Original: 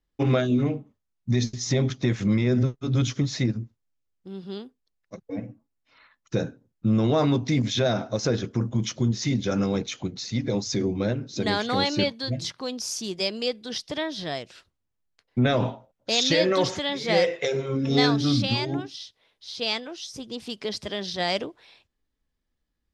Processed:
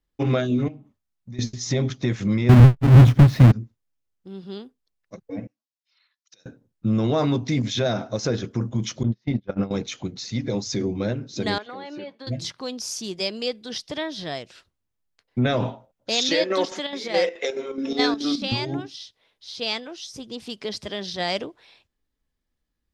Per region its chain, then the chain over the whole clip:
0.68–1.39 s: peaking EQ 470 Hz -8.5 dB 0.24 oct + compression 2.5:1, threshold -42 dBFS
2.49–3.52 s: square wave that keeps the level + tone controls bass +11 dB, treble -12 dB
5.47–6.46 s: compression 16:1, threshold -34 dBFS + band-pass filter 4.9 kHz, Q 2
9.03–9.71 s: gate -24 dBFS, range -25 dB + transient shaper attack +5 dB, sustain -3 dB + distance through air 290 m
11.58–12.27 s: three-band isolator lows -23 dB, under 200 Hz, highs -16 dB, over 2.6 kHz + compression 4:1, threshold -33 dBFS + comb of notches 230 Hz
16.29–18.52 s: steep high-pass 200 Hz 48 dB/octave + square tremolo 4.7 Hz, depth 60%, duty 70%
whole clip: none

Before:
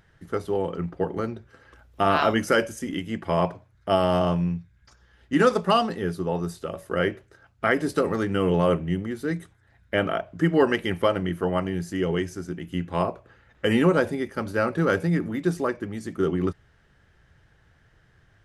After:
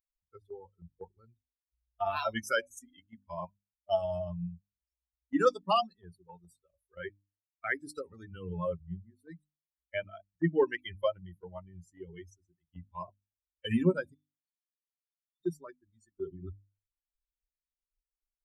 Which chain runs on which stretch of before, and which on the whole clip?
14.14–15.41 s: inverse Chebyshev high-pass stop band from 420 Hz, stop band 80 dB + compression 5:1, threshold -55 dBFS
whole clip: expander on every frequency bin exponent 3; gate -49 dBFS, range -7 dB; hum notches 50/100/150/200/250/300 Hz; trim -2 dB

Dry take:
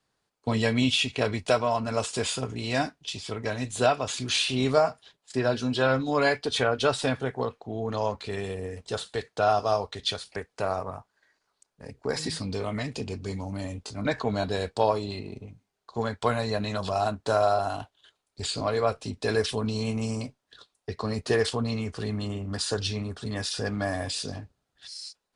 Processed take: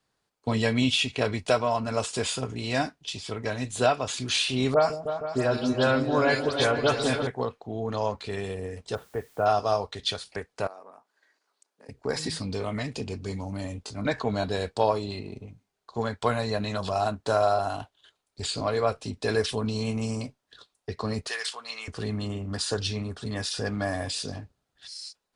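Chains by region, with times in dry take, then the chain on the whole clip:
4.74–7.27 s: phase dispersion highs, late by 97 ms, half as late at 3 kHz + delay with an opening low-pass 156 ms, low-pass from 400 Hz, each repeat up 2 oct, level -6 dB
8.95–9.46 s: Gaussian low-pass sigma 4.9 samples + word length cut 10-bit, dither triangular
10.67–11.89 s: high-pass 240 Hz 24 dB/octave + compression 2:1, threshold -54 dBFS
21.27–21.88 s: high-pass 1.4 kHz + three bands compressed up and down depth 70%
whole clip: none

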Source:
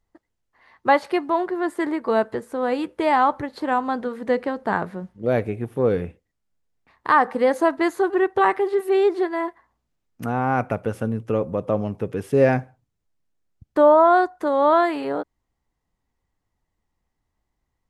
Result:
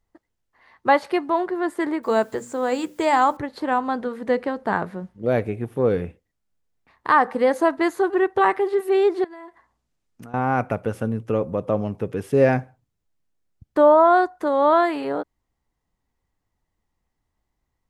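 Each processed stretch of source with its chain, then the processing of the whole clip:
2.03–3.37 s: resonant low-pass 7.3 kHz, resonance Q 9.2 + hum notches 60/120/180/240/300 Hz + word length cut 10-bit, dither triangular
9.24–10.34 s: low-pass 10 kHz + treble shelf 5.6 kHz +6 dB + compression 12:1, threshold -37 dBFS
whole clip: none

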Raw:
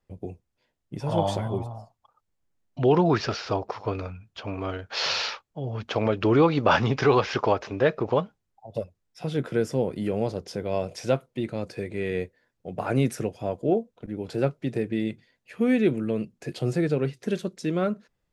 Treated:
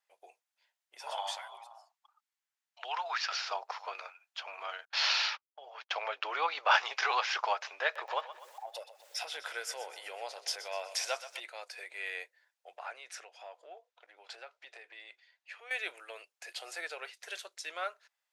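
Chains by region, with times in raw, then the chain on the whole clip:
1.15–3.32 s: high-pass 890 Hz + treble shelf 7.7 kHz -5 dB
4.85–6.74 s: gate -38 dBFS, range -30 dB + peaking EQ 10 kHz -7.5 dB 1.4 oct
7.83–11.40 s: upward compressor, threshold -23 dBFS + two-band feedback delay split 440 Hz, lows 324 ms, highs 125 ms, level -13.5 dB
12.77–15.71 s: low-pass 5.6 kHz + compression 3:1, threshold -32 dBFS
whole clip: inverse Chebyshev high-pass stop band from 240 Hz, stop band 60 dB; peaking EQ 1.1 kHz -4.5 dB 0.66 oct

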